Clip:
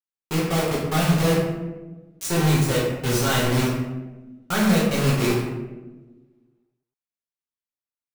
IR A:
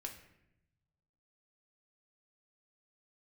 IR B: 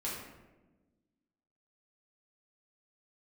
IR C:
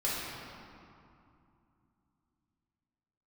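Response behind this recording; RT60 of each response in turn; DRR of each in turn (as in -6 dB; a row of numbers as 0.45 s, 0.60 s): B; 0.85 s, 1.2 s, 2.6 s; 1.5 dB, -7.0 dB, -8.5 dB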